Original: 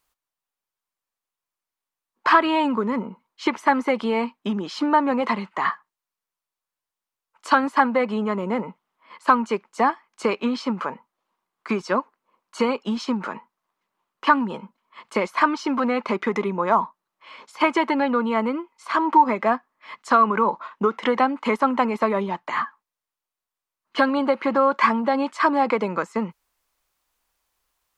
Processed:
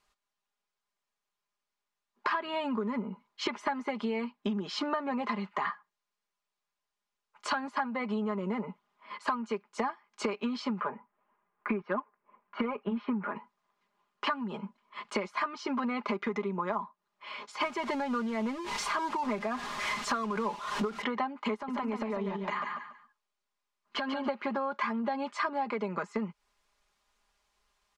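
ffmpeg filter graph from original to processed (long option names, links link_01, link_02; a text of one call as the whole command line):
ffmpeg -i in.wav -filter_complex "[0:a]asettb=1/sr,asplit=3[link_01][link_02][link_03];[link_01]atrim=end=10.804[link_04];[link_02]atrim=start=10.8:end=13.36,asetpts=PTS-STARTPTS,afade=type=in:duration=0.004:curve=qsin,afade=type=out:start_time=2.556:duration=0.004:curve=qsin,lowpass=frequency=2300:width=0.5412,lowpass=frequency=2300:width=1.3066,acontrast=50,flanger=delay=1.6:depth=3:regen=-55:speed=1.5:shape=sinusoidal[link_05];[link_03]atrim=start=13.356[link_06];[link_04][link_05]acrossfade=duration=0.004:curve1=hsin:curve2=qsin[link_07];[link_07][link_06]acrossfade=duration=0.004:curve1=qsin:curve2=hsin,asettb=1/sr,asplit=3[link_08][link_09][link_10];[link_08]atrim=end=17.624[link_11];[link_09]atrim=start=17.62:end=21.02,asetpts=PTS-STARTPTS,afade=type=in:duration=0.004:curve=qsin,afade=type=out:start_time=3.396:duration=0.004:curve=qsin,aeval=exprs='val(0)+0.5*0.0447*sgn(val(0))':channel_layout=same,tremolo=f=3.5:d=0.4[link_12];[link_10]atrim=start=21.016[link_13];[link_11][link_12]acrossfade=duration=0.004:curve1=hsin:curve2=qsin[link_14];[link_14][link_13]acrossfade=duration=0.004:curve1=qsin:curve2=hsin,asettb=1/sr,asplit=3[link_15][link_16][link_17];[link_15]atrim=end=21.544[link_18];[link_16]atrim=start=21.54:end=24.27,asetpts=PTS-STARTPTS,afade=type=in:duration=0.004:curve=qsin,afade=type=out:start_time=2.726:duration=0.004:curve=qsin,acompressor=threshold=-28dB:ratio=8:attack=3.2:release=140:knee=1:detection=peak,aecho=1:1:142|284|426:0.501|0.13|0.0339,atrim=end_sample=120393[link_19];[link_17]atrim=start=24.266[link_20];[link_18][link_19]acrossfade=duration=0.004:curve1=hsin:curve2=qsin[link_21];[link_21][link_20]acrossfade=duration=0.004:curve1=qsin:curve2=hsin,lowpass=6600,aecho=1:1:4.9:0.67,acompressor=threshold=-30dB:ratio=6" out.wav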